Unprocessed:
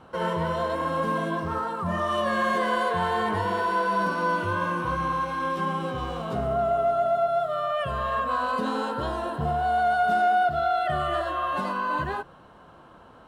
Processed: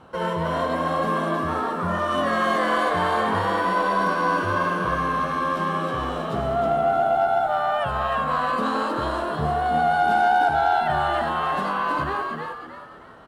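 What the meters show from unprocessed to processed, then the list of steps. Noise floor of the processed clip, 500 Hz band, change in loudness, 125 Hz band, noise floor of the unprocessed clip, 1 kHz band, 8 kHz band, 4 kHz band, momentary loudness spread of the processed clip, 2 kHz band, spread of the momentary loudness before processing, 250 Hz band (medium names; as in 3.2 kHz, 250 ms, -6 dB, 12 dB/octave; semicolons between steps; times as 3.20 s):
-39 dBFS, +2.5 dB, +3.0 dB, +2.0 dB, -51 dBFS, +3.5 dB, no reading, +3.5 dB, 6 LU, +3.5 dB, 6 LU, +3.5 dB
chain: frequency-shifting echo 315 ms, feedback 36%, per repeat +87 Hz, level -4 dB; Chebyshev shaper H 6 -32 dB, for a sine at -11.5 dBFS; trim +1.5 dB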